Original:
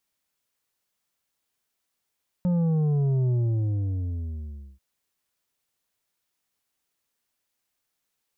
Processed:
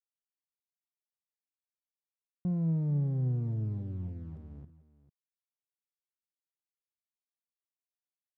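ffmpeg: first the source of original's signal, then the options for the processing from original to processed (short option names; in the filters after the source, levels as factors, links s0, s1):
-f lavfi -i "aevalsrc='0.0891*clip((2.34-t)/1.49,0,1)*tanh(2.24*sin(2*PI*180*2.34/log(65/180)*(exp(log(65/180)*t/2.34)-1)))/tanh(2.24)':d=2.34:s=44100"
-af "acrusher=bits=4:dc=4:mix=0:aa=0.000001,bandpass=f=160:t=q:w=1.2:csg=0,aecho=1:1:55|446:0.188|0.15"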